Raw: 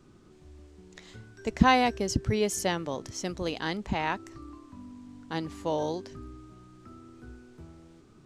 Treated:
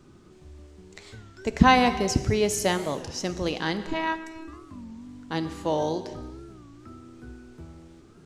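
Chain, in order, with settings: 3.86–4.48 s: robot voice 322 Hz; gated-style reverb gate 500 ms falling, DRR 10 dB; warped record 33 1/3 rpm, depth 160 cents; trim +3.5 dB

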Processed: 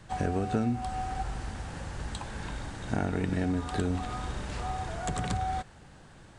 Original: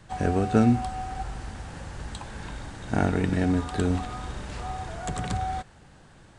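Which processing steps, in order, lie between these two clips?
compression 4:1, threshold -26 dBFS, peak gain reduction 10 dB

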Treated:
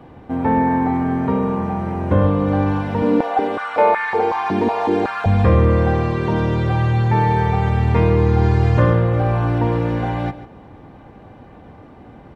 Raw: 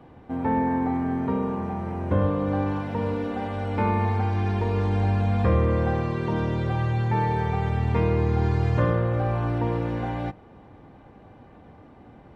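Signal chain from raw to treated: delay 144 ms -14 dB; 3.02–5.26 s: step-sequenced high-pass 5.4 Hz 260–1600 Hz; trim +7 dB

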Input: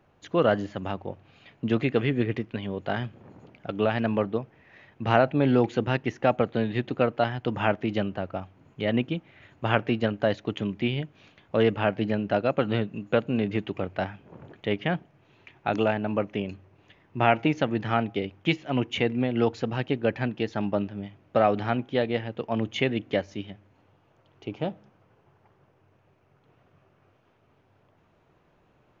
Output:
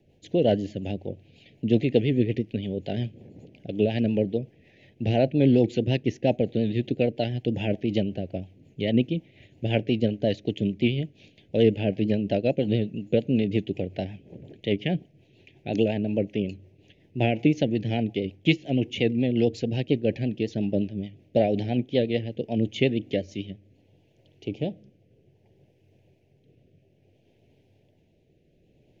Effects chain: Butterworth band-stop 1.2 kHz, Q 0.64; rotary cabinet horn 5.5 Hz, later 0.6 Hz, at 22.81 s; vibrato 8.8 Hz 50 cents; trim +4.5 dB

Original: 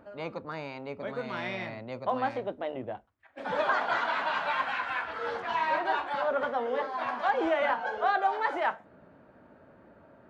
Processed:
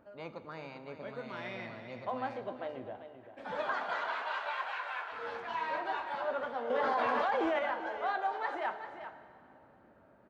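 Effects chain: 3.84–5.12 s: steep high-pass 360 Hz 72 dB/octave; delay 389 ms -10.5 dB; plate-style reverb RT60 2.7 s, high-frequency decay 0.85×, DRR 10.5 dB; 6.70–7.59 s: level flattener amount 100%; trim -7.5 dB

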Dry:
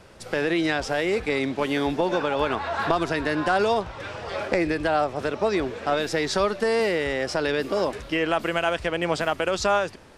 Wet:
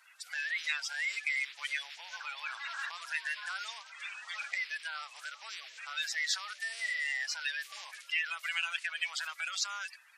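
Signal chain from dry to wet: coarse spectral quantiser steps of 30 dB; in parallel at -2.5 dB: compressor with a negative ratio -28 dBFS; on the sum: ladder high-pass 1.7 kHz, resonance 30%; trim -2 dB

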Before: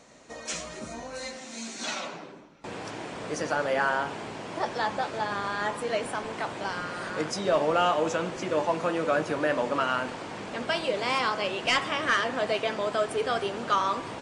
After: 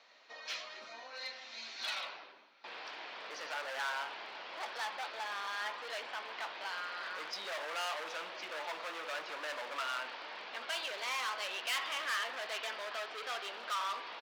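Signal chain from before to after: steep low-pass 4.7 kHz 36 dB/octave; peaking EQ 1.4 kHz -4 dB 2.1 oct; echo from a far wall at 140 m, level -19 dB; hard clipper -30.5 dBFS, distortion -7 dB; high-pass 1.1 kHz 12 dB/octave

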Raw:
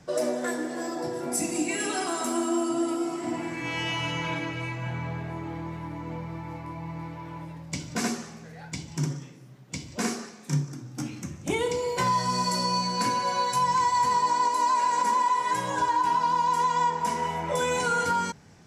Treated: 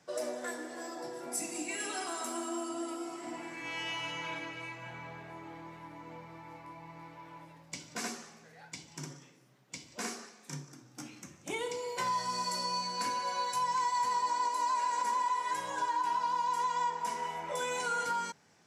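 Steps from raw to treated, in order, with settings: high-pass 530 Hz 6 dB/octave; trim -6.5 dB

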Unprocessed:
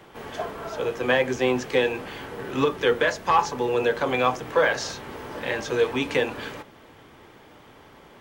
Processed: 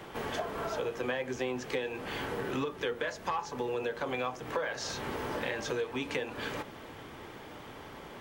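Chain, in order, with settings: compression 6:1, threshold -35 dBFS, peak gain reduction 19 dB; trim +3 dB

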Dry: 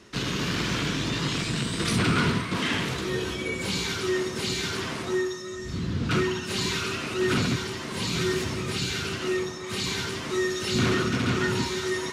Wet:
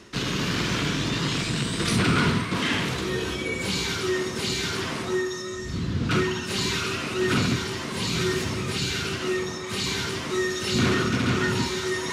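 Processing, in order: reverse; upward compressor, threshold -28 dBFS; reverse; flutter echo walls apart 8.1 m, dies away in 0.21 s; trim +1.5 dB

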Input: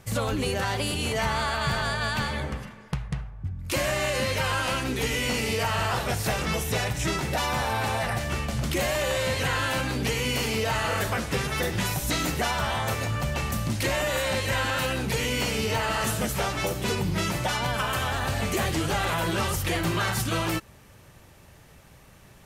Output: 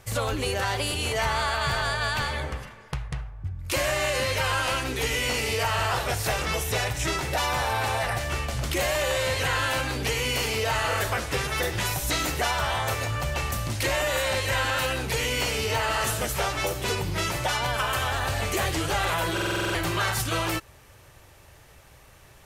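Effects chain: peaking EQ 200 Hz -11 dB 0.92 oct; buffer glitch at 19.33 s, samples 2048, times 8; trim +1.5 dB

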